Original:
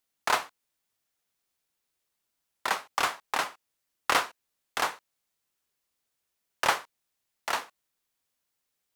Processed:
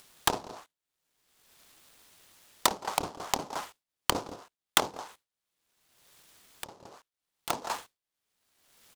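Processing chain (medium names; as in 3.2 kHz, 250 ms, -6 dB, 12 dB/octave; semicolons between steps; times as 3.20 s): delay 167 ms -10 dB; low-pass that closes with the level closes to 320 Hz, closed at -26.5 dBFS; expander -50 dBFS; upward compressor, threshold -44 dBFS; dynamic bell 890 Hz, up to +4 dB, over -48 dBFS, Q 3.8; hard clipper -23 dBFS, distortion -8 dB; high-order bell 5 kHz +14 dB; 4.90–7.50 s: compression 16:1, threshold -44 dBFS, peak gain reduction 20.5 dB; delay time shaken by noise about 4.3 kHz, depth 0.054 ms; trim +6.5 dB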